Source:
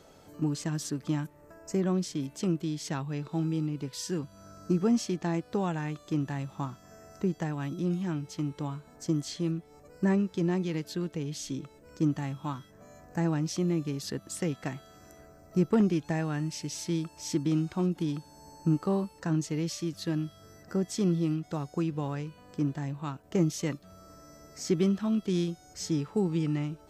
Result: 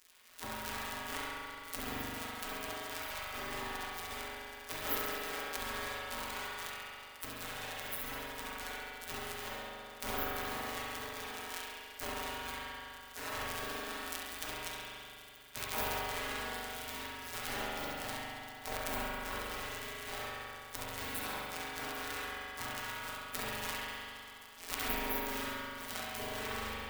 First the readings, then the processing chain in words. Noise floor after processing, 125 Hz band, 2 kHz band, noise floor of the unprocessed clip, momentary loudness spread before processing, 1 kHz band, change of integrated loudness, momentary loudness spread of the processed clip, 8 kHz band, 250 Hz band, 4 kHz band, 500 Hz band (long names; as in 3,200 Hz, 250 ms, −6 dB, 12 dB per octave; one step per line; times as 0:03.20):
−51 dBFS, −21.5 dB, +6.0 dB, −56 dBFS, 11 LU, +1.5 dB, −8.0 dB, 8 LU, −3.5 dB, −20.0 dB, +2.0 dB, −10.0 dB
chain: samples sorted by size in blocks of 256 samples
spectral tilt +3 dB per octave
gate on every frequency bin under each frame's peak −25 dB weak
feedback echo with a high-pass in the loop 68 ms, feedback 69%, high-pass 470 Hz, level −7 dB
spring reverb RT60 2.6 s, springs 41 ms, chirp 30 ms, DRR −5.5 dB
level +10 dB